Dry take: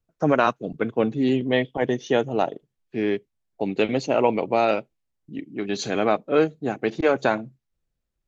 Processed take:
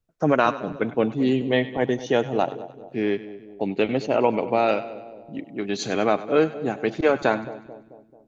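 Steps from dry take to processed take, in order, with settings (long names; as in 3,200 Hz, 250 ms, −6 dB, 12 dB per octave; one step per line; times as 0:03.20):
0:03.66–0:04.66: high-frequency loss of the air 100 metres
on a send: echo with a time of its own for lows and highs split 760 Hz, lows 219 ms, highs 98 ms, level −15 dB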